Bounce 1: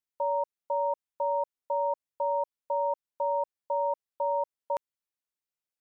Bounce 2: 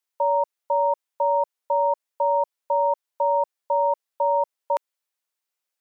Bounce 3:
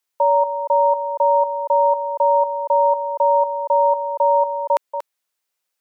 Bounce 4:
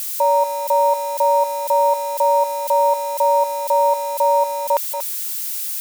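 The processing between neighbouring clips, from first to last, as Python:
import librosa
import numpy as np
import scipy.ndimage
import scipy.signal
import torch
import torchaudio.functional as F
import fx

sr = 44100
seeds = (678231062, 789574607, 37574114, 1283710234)

y1 = scipy.signal.sosfilt(scipy.signal.butter(2, 450.0, 'highpass', fs=sr, output='sos'), x)
y1 = y1 * librosa.db_to_amplitude(8.0)
y2 = y1 + 10.0 ** (-9.0 / 20.0) * np.pad(y1, (int(235 * sr / 1000.0), 0))[:len(y1)]
y2 = y2 * librosa.db_to_amplitude(5.5)
y3 = y2 + 0.5 * 10.0 ** (-22.0 / 20.0) * np.diff(np.sign(y2), prepend=np.sign(y2[:1]))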